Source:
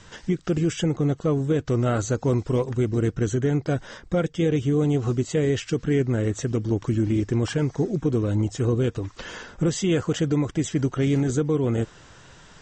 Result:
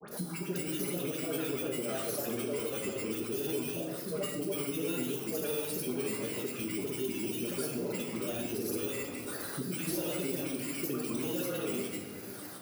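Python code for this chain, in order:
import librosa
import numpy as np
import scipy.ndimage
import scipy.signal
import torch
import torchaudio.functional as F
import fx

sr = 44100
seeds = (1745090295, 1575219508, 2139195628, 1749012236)

y = fx.bit_reversed(x, sr, seeds[0], block=16)
y = scipy.signal.sosfilt(scipy.signal.butter(2, 260.0, 'highpass', fs=sr, output='sos'), y)
y = fx.high_shelf(y, sr, hz=4500.0, db=9.5)
y = np.clip(y, -10.0 ** (-19.5 / 20.0), 10.0 ** (-19.5 / 20.0))
y = fx.notch_comb(y, sr, f0_hz=1000.0)
y = fx.dispersion(y, sr, late='highs', ms=128.0, hz=1100.0)
y = fx.granulator(y, sr, seeds[1], grain_ms=100.0, per_s=20.0, spray_ms=100.0, spread_st=3)
y = y + 10.0 ** (-23.0 / 20.0) * np.pad(y, (int(490 * sr / 1000.0), 0))[:len(y)]
y = fx.room_shoebox(y, sr, seeds[2], volume_m3=440.0, walls='mixed', distance_m=1.3)
y = fx.band_squash(y, sr, depth_pct=70)
y = F.gain(torch.from_numpy(y), -9.0).numpy()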